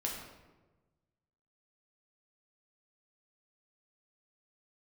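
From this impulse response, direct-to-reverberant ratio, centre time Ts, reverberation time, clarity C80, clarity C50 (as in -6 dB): -2.0 dB, 52 ms, 1.2 s, 5.0 dB, 3.0 dB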